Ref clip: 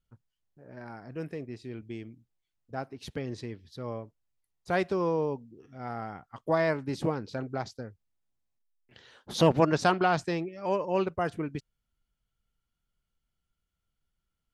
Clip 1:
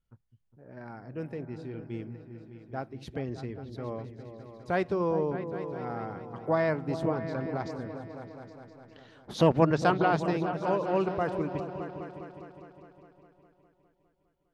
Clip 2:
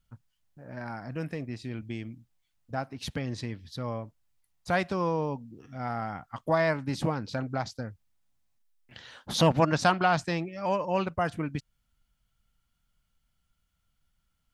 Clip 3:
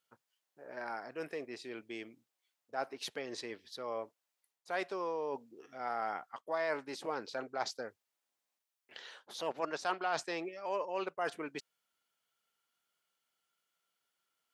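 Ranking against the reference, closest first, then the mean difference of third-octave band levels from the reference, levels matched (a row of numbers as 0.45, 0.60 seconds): 2, 1, 3; 3.0, 5.0, 7.5 decibels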